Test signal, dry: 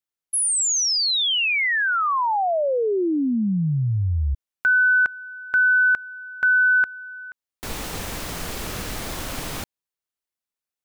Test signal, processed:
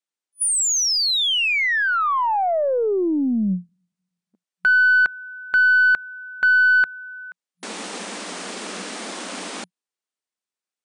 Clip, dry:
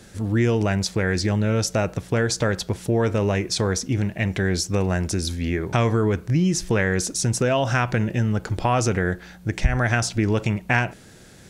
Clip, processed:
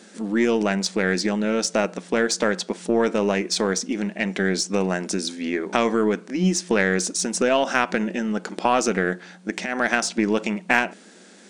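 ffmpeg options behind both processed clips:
ffmpeg -i in.wav -af "afftfilt=real='re*between(b*sr/4096,180,9900)':imag='im*between(b*sr/4096,180,9900)':win_size=4096:overlap=0.75,aeval=exprs='0.631*(cos(1*acos(clip(val(0)/0.631,-1,1)))-cos(1*PI/2))+0.0141*(cos(2*acos(clip(val(0)/0.631,-1,1)))-cos(2*PI/2))+0.0112*(cos(5*acos(clip(val(0)/0.631,-1,1)))-cos(5*PI/2))+0.00501*(cos(6*acos(clip(val(0)/0.631,-1,1)))-cos(6*PI/2))+0.0251*(cos(7*acos(clip(val(0)/0.631,-1,1)))-cos(7*PI/2))':channel_layout=same,volume=2.5dB" out.wav

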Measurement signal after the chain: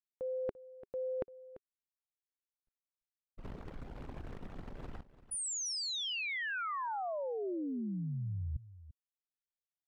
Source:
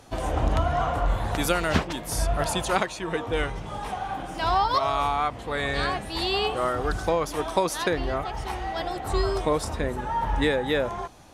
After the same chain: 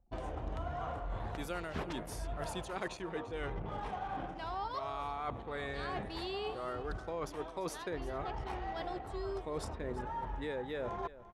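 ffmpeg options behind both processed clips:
ffmpeg -i in.wav -af "highshelf=frequency=3800:gain=-6.5,anlmdn=0.631,adynamicequalizer=threshold=0.00891:dfrequency=400:dqfactor=4:tfrequency=400:tqfactor=4:attack=5:release=100:ratio=0.375:range=2:mode=boostabove:tftype=bell,areverse,acompressor=threshold=-36dB:ratio=12,areverse,aecho=1:1:342:0.158" out.wav

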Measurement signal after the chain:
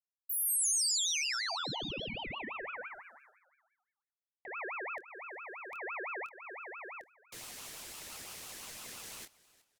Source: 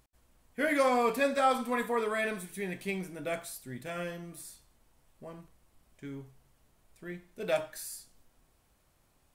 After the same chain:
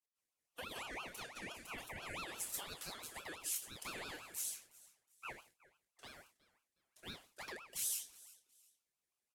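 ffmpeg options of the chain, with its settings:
ffmpeg -i in.wav -filter_complex "[0:a]highpass=frequency=530:width=0.5412,highpass=frequency=530:width=1.3066,agate=range=-33dB:threshold=-59dB:ratio=3:detection=peak,asplit=2[link_01][link_02];[link_02]acrusher=bits=3:mix=0:aa=0.5,volume=-11.5dB[link_03];[link_01][link_03]amix=inputs=2:normalize=0,equalizer=frequency=670:width_type=o:width=1.2:gain=7.5,acompressor=threshold=-34dB:ratio=5,alimiter=level_in=10dB:limit=-24dB:level=0:latency=1:release=220,volume=-10dB,equalizer=frequency=8100:width_type=o:width=2.6:gain=12.5,asplit=2[link_04][link_05];[link_05]adelay=26,volume=-7.5dB[link_06];[link_04][link_06]amix=inputs=2:normalize=0,asplit=3[link_07][link_08][link_09];[link_08]adelay=366,afreqshift=-44,volume=-21dB[link_10];[link_09]adelay=732,afreqshift=-88,volume=-31.2dB[link_11];[link_07][link_10][link_11]amix=inputs=3:normalize=0,aeval=exprs='val(0)*sin(2*PI*1500*n/s+1500*0.35/5.9*sin(2*PI*5.9*n/s))':channel_layout=same,volume=-3dB" out.wav

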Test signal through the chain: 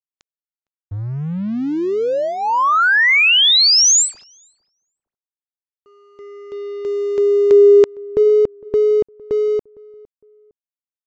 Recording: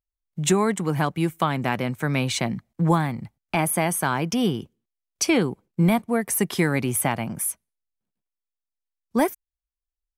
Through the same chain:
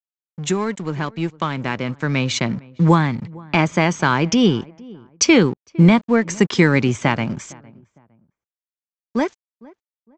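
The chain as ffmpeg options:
ffmpeg -i in.wav -filter_complex "[0:a]equalizer=frequency=730:width_type=o:width=0.32:gain=-8.5,dynaudnorm=framelen=350:gausssize=13:maxgain=13dB,aeval=exprs='sgn(val(0))*max(abs(val(0))-0.0126,0)':channel_layout=same,asplit=2[link_01][link_02];[link_02]adelay=458,lowpass=frequency=1200:poles=1,volume=-22.5dB,asplit=2[link_03][link_04];[link_04]adelay=458,lowpass=frequency=1200:poles=1,volume=0.31[link_05];[link_01][link_03][link_05]amix=inputs=3:normalize=0,aresample=16000,aresample=44100" out.wav

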